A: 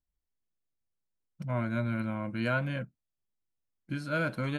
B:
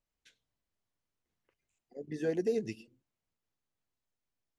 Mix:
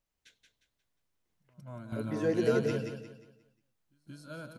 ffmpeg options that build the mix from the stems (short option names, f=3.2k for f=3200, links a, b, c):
-filter_complex "[0:a]equalizer=f=2.1k:t=o:w=0.72:g=-14,highshelf=f=3.5k:g=10.5,volume=-4.5dB,asplit=2[a][b];[b]volume=-8.5dB[c];[1:a]volume=2.5dB,asplit=3[d][e][f];[e]volume=-5.5dB[g];[f]apad=whole_len=202207[h];[a][h]sidechaingate=range=-33dB:threshold=-60dB:ratio=16:detection=peak[i];[c][g]amix=inputs=2:normalize=0,aecho=0:1:178|356|534|712|890:1|0.35|0.122|0.0429|0.015[j];[i][d][j]amix=inputs=3:normalize=0"